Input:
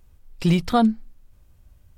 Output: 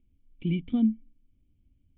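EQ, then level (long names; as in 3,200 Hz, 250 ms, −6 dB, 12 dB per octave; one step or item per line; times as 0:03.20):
formant resonators in series i
0.0 dB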